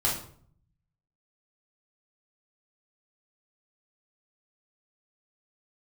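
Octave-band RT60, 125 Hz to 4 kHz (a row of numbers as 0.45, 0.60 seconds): 1.2, 0.75, 0.60, 0.55, 0.45, 0.40 seconds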